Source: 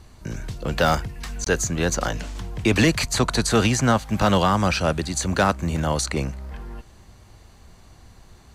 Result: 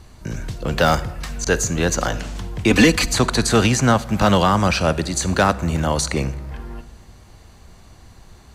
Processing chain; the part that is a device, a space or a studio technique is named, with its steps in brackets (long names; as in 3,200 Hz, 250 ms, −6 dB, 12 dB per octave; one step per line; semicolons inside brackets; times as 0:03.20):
0:02.70–0:03.13: comb filter 4 ms, depth 80%
compressed reverb return (on a send at −13 dB: convolution reverb RT60 0.90 s, pre-delay 40 ms + downward compressor, threshold −19 dBFS, peak gain reduction 10 dB)
on the sum: level +3 dB